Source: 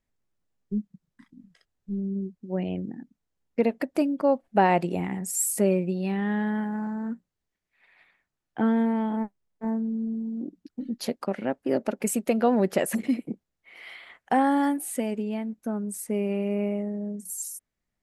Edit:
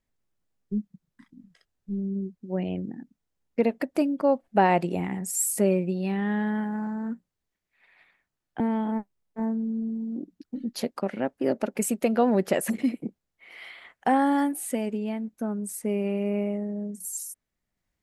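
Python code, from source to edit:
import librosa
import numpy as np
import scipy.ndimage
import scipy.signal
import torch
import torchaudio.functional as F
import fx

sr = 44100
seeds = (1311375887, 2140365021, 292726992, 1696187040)

y = fx.edit(x, sr, fx.cut(start_s=8.6, length_s=0.25), tone=tone)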